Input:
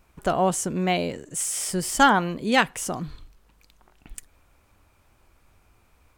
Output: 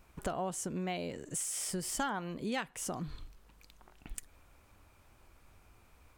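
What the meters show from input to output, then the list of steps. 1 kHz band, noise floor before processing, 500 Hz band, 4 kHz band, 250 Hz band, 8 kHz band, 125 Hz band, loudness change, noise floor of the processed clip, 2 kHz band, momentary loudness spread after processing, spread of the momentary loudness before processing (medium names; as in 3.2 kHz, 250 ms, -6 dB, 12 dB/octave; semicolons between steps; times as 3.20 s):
-16.5 dB, -62 dBFS, -13.5 dB, -14.0 dB, -12.5 dB, -9.0 dB, -11.0 dB, -14.0 dB, -64 dBFS, -17.0 dB, 13 LU, 12 LU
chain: compression 4:1, threshold -34 dBFS, peak gain reduction 18 dB; trim -1.5 dB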